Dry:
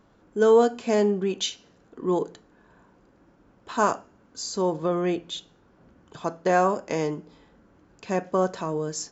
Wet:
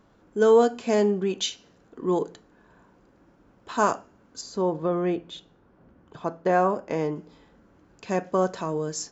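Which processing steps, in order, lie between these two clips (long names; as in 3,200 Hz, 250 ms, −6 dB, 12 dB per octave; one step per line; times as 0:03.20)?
0:04.41–0:07.16: low-pass filter 1,900 Hz 6 dB per octave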